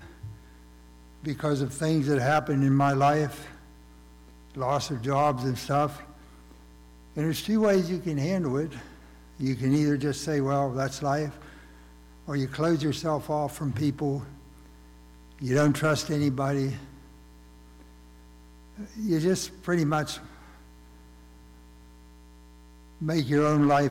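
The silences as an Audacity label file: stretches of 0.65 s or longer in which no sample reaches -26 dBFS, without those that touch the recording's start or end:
3.260000	4.600000	silence
5.870000	7.170000	silence
8.660000	9.420000	silence
11.260000	12.290000	silence
14.170000	15.430000	silence
16.720000	19.040000	silence
20.130000	23.020000	silence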